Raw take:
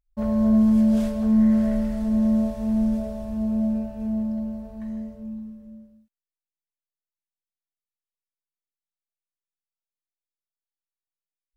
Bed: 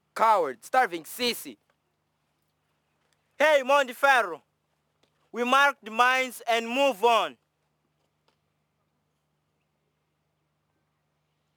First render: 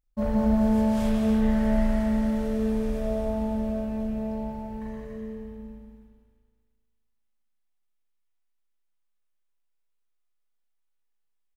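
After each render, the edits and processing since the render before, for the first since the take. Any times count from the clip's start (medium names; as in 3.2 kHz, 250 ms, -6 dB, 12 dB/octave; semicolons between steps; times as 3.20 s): loudspeakers at several distances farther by 60 m -6 dB, 98 m -7 dB; spring tank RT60 1.8 s, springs 34/38 ms, chirp 50 ms, DRR -3.5 dB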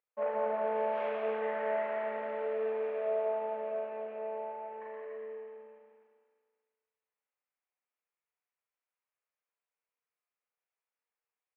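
elliptic band-pass 440–2500 Hz, stop band 60 dB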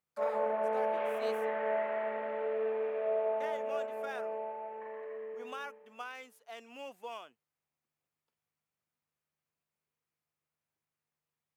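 add bed -22.5 dB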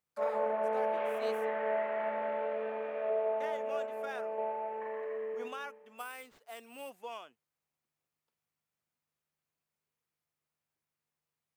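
1.97–3.10 s: doubling 24 ms -4.5 dB; 4.38–5.48 s: gain +4.5 dB; 5.98–6.91 s: careless resampling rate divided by 4×, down none, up hold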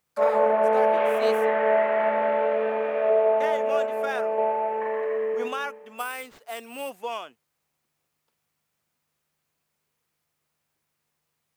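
trim +11.5 dB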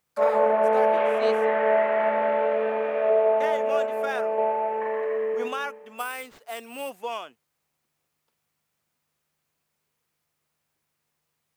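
1.02–1.50 s: distance through air 52 m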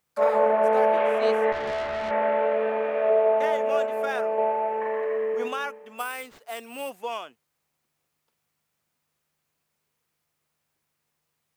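1.52–2.11 s: valve stage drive 26 dB, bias 0.65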